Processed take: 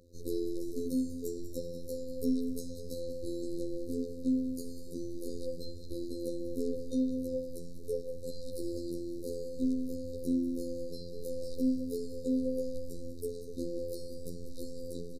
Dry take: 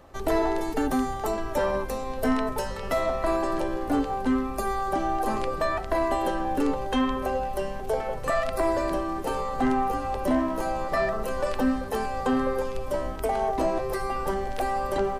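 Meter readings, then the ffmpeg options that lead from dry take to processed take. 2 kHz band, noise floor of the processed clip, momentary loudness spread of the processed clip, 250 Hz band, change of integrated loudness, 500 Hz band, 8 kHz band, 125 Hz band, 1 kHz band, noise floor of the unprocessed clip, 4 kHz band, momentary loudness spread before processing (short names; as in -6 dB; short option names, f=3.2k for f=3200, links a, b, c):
under -40 dB, -41 dBFS, 10 LU, -5.5 dB, -9.5 dB, -10.5 dB, -8.0 dB, -8.5 dB, under -40 dB, -33 dBFS, -11.5 dB, 4 LU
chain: -af "afftfilt=real='re*(1-between(b*sr/4096,570,3700))':imag='im*(1-between(b*sr/4096,570,3700))':win_size=4096:overlap=0.75,afftfilt=real='hypot(re,im)*cos(PI*b)':imag='0':win_size=2048:overlap=0.75,aecho=1:1:194|388|582:0.224|0.0784|0.0274,volume=-4.5dB"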